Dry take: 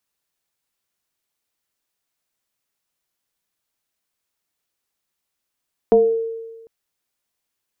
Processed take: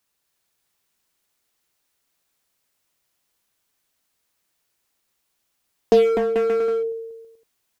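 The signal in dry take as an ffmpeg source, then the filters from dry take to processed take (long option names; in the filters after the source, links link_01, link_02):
-f lavfi -i "aevalsrc='0.422*pow(10,-3*t/1.3)*sin(2*PI*454*t+0.74*pow(10,-3*t/0.5)*sin(2*PI*0.53*454*t))':duration=0.75:sample_rate=44100"
-filter_complex "[0:a]aecho=1:1:250|437.5|578.1|683.6|762.7:0.631|0.398|0.251|0.158|0.1,asplit=2[link_01][link_02];[link_02]aeval=exprs='0.0562*(abs(mod(val(0)/0.0562+3,4)-2)-1)':channel_layout=same,volume=-4dB[link_03];[link_01][link_03]amix=inputs=2:normalize=0"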